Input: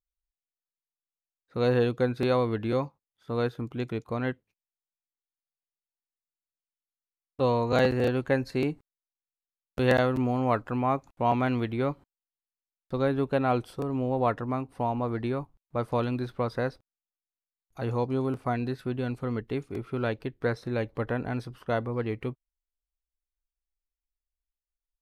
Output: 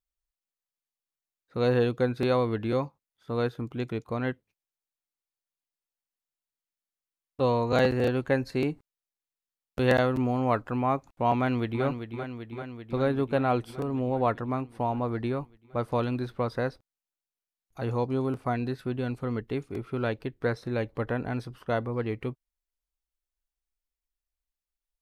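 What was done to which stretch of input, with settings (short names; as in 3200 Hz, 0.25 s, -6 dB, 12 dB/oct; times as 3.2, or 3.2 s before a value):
11.35–11.84 echo throw 0.39 s, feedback 75%, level -8 dB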